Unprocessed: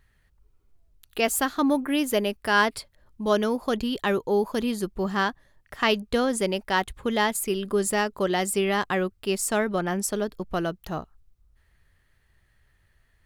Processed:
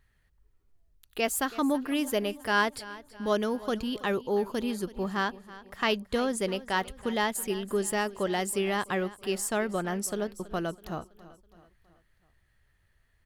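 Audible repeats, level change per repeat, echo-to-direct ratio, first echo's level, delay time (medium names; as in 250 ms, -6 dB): 3, -6.0 dB, -17.0 dB, -18.0 dB, 327 ms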